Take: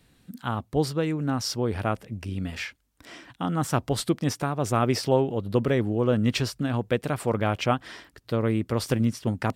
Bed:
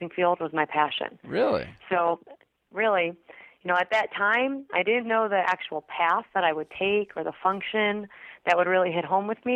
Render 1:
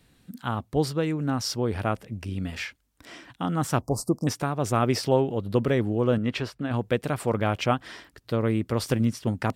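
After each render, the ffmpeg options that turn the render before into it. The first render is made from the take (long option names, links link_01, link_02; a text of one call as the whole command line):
ffmpeg -i in.wav -filter_complex "[0:a]asettb=1/sr,asplit=3[link_01][link_02][link_03];[link_01]atrim=end=3.814[link_04];[link_02]atrim=start=3.81:end=4.27,asetpts=PTS-STARTPTS,afade=type=in:duration=0.004:curve=qsin,afade=type=out:start_time=0.456:duration=0.004:curve=qsin,asuperstop=centerf=2400:order=12:qfactor=0.62[link_05];[link_03]atrim=start=4.266[link_06];[link_04][link_05]acrossfade=duration=0.004:curve1=hsin:curve2=qsin[link_07];[link_07][link_06]acrossfade=duration=0.004:curve1=qsin:curve2=hsin,asettb=1/sr,asplit=3[link_08][link_09][link_10];[link_08]atrim=end=6.184[link_11];[link_09]atrim=start=6.18:end=6.71,asetpts=PTS-STARTPTS,afade=type=in:duration=0.004:curve=qsin,afade=type=out:start_time=0.526:duration=0.004:curve=qsin,bass=frequency=250:gain=-6,treble=frequency=4000:gain=-13[link_12];[link_10]atrim=start=6.706[link_13];[link_11][link_12]acrossfade=duration=0.004:curve1=hsin:curve2=qsin[link_14];[link_14][link_13]acrossfade=duration=0.004:curve1=qsin:curve2=hsin" out.wav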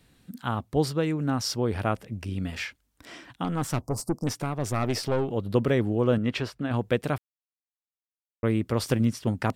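ffmpeg -i in.wav -filter_complex "[0:a]asettb=1/sr,asplit=3[link_01][link_02][link_03];[link_01]atrim=end=3.444[link_04];[link_02]atrim=start=3.44:end=5.32,asetpts=PTS-STARTPTS,afade=type=in:duration=0.004:curve=qsin,afade=type=out:start_time=1.876:duration=0.004:curve=qsin,aeval=exprs='(tanh(8.91*val(0)+0.4)-tanh(0.4))/8.91':channel_layout=same[link_05];[link_03]atrim=start=5.316[link_06];[link_04][link_05]acrossfade=duration=0.004:curve1=hsin:curve2=qsin[link_07];[link_07][link_06]acrossfade=duration=0.004:curve1=qsin:curve2=hsin,asplit=3[link_08][link_09][link_10];[link_08]atrim=end=7.18,asetpts=PTS-STARTPTS,afade=type=out:start_time=7.176:duration=0.004:curve=hsin[link_11];[link_09]atrim=start=7.18:end=8.43,asetpts=PTS-STARTPTS,volume=0[link_12];[link_10]atrim=start=8.43,asetpts=PTS-STARTPTS,afade=type=in:duration=0.004:curve=hsin[link_13];[link_11][link_12][link_13]concat=n=3:v=0:a=1" out.wav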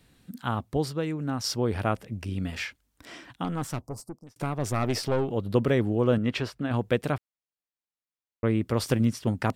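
ffmpeg -i in.wav -filter_complex "[0:a]asettb=1/sr,asplit=3[link_01][link_02][link_03];[link_01]atrim=end=7.124[link_04];[link_02]atrim=start=7.12:end=8.61,asetpts=PTS-STARTPTS,afade=type=in:duration=0.004:curve=qsin,afade=type=out:start_time=1.486:duration=0.004:curve=qsin,highshelf=frequency=7000:gain=-10.5[link_05];[link_03]atrim=start=8.606[link_06];[link_04][link_05]acrossfade=duration=0.004:curve1=hsin:curve2=qsin[link_07];[link_07][link_06]acrossfade=duration=0.004:curve1=qsin:curve2=hsin,asplit=4[link_08][link_09][link_10][link_11];[link_08]atrim=end=0.772[link_12];[link_09]atrim=start=0.768:end=1.442,asetpts=PTS-STARTPTS,volume=-3.5dB[link_13];[link_10]atrim=start=1.438:end=4.36,asetpts=PTS-STARTPTS,afade=type=out:start_time=1.872:duration=1.05[link_14];[link_11]atrim=start=4.36,asetpts=PTS-STARTPTS,afade=type=in:duration=0.004:curve=hsin[link_15];[link_12][link_13]acrossfade=duration=0.004:curve1=hsin:curve2=hsin[link_16];[link_14][link_15]concat=n=2:v=0:a=1[link_17];[link_16][link_17]acrossfade=duration=0.004:curve1=hsin:curve2=hsin" out.wav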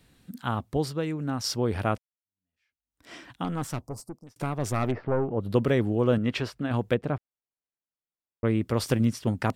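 ffmpeg -i in.wav -filter_complex "[0:a]asplit=3[link_01][link_02][link_03];[link_01]afade=type=out:start_time=4.9:duration=0.02[link_04];[link_02]lowpass=frequency=1800:width=0.5412,lowpass=frequency=1800:width=1.3066,afade=type=in:start_time=4.9:duration=0.02,afade=type=out:start_time=5.4:duration=0.02[link_05];[link_03]afade=type=in:start_time=5.4:duration=0.02[link_06];[link_04][link_05][link_06]amix=inputs=3:normalize=0,asettb=1/sr,asplit=3[link_07][link_08][link_09];[link_07]atrim=end=6.944[link_10];[link_08]atrim=start=6.94:end=8.45,asetpts=PTS-STARTPTS,afade=type=in:duration=0.004:curve=qsin,afade=type=out:start_time=1.506:duration=0.004:curve=qsin,lowpass=frequency=1000:poles=1[link_11];[link_09]atrim=start=8.446[link_12];[link_10][link_11]acrossfade=duration=0.004:curve1=hsin:curve2=qsin[link_13];[link_13][link_12]acrossfade=duration=0.004:curve1=qsin:curve2=hsin,asplit=2[link_14][link_15];[link_14]atrim=end=1.98,asetpts=PTS-STARTPTS,afade=type=out:start_time=1.976:duration=0.004:curve=hsin[link_16];[link_15]atrim=start=1.98,asetpts=PTS-STARTPTS,afade=type=in:duration=1.15:curve=exp[link_17];[link_16][link_17]concat=n=2:v=0:a=1" out.wav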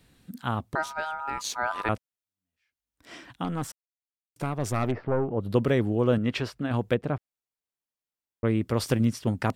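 ffmpeg -i in.wav -filter_complex "[0:a]asettb=1/sr,asplit=3[link_01][link_02][link_03];[link_01]atrim=end=0.754[link_04];[link_02]atrim=start=0.75:end=1.89,asetpts=PTS-STARTPTS,afade=type=in:duration=0.004:curve=qsin,afade=type=out:start_time=1.136:duration=0.004:curve=qsin,aeval=exprs='val(0)*sin(2*PI*1100*n/s)':channel_layout=same[link_05];[link_03]atrim=start=1.886[link_06];[link_04][link_05]acrossfade=duration=0.004:curve1=hsin:curve2=qsin[link_07];[link_07][link_06]acrossfade=duration=0.004:curve1=qsin:curve2=hsin,asplit=3[link_08][link_09][link_10];[link_08]atrim=end=3.72,asetpts=PTS-STARTPTS,afade=type=out:start_time=3.716:duration=0.004:curve=hsin[link_11];[link_09]atrim=start=3.72:end=4.36,asetpts=PTS-STARTPTS,volume=0[link_12];[link_10]atrim=start=4.36,asetpts=PTS-STARTPTS,afade=type=in:duration=0.004:curve=hsin[link_13];[link_11][link_12][link_13]concat=n=3:v=0:a=1" out.wav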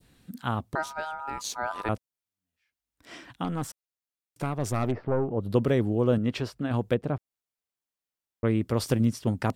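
ffmpeg -i in.wav -af "adynamicequalizer=threshold=0.00562:dfrequency=2000:dqfactor=0.72:tfrequency=2000:tqfactor=0.72:attack=5:release=100:ratio=0.375:range=3:mode=cutabove:tftype=bell" out.wav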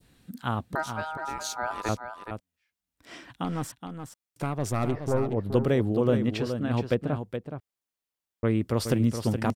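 ffmpeg -i in.wav -af "aecho=1:1:421:0.398" out.wav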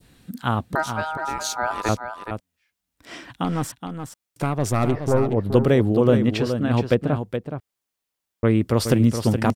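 ffmpeg -i in.wav -af "volume=6.5dB" out.wav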